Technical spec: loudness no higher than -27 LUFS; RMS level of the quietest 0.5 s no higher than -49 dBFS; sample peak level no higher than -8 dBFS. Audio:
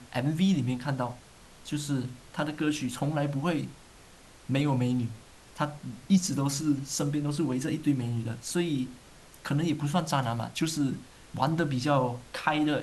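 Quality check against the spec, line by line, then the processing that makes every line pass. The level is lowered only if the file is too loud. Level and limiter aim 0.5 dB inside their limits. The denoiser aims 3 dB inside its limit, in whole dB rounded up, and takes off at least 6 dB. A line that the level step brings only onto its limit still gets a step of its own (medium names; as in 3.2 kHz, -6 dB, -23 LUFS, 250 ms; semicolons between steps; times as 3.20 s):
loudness -29.5 LUFS: pass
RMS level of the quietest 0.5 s -53 dBFS: pass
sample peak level -11.0 dBFS: pass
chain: none needed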